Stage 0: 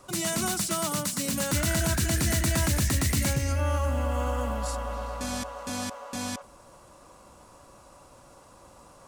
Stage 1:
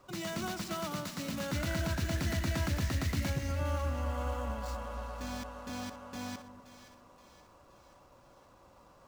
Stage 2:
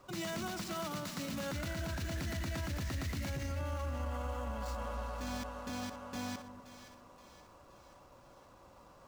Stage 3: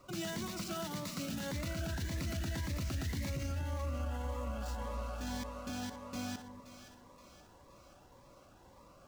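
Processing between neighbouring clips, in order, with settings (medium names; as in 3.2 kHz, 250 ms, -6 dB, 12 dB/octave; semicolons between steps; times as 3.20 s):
median filter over 5 samples; two-band feedback delay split 1.3 kHz, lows 242 ms, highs 524 ms, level -12.5 dB; trim -7 dB
peak limiter -31.5 dBFS, peak gain reduction 9.5 dB; trim +1 dB
Shepard-style phaser rising 1.8 Hz; trim +1 dB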